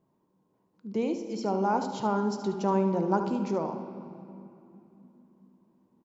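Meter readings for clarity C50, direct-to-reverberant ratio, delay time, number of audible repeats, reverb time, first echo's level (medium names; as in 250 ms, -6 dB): 6.5 dB, 6.0 dB, 73 ms, 1, 2.9 s, -10.0 dB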